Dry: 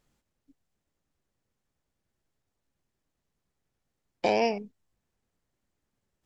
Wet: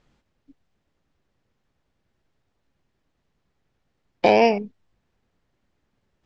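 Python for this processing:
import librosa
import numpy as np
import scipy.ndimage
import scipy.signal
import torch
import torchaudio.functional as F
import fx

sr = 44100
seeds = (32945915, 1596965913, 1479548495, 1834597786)

y = scipy.signal.sosfilt(scipy.signal.butter(2, 4300.0, 'lowpass', fs=sr, output='sos'), x)
y = y * librosa.db_to_amplitude(9.0)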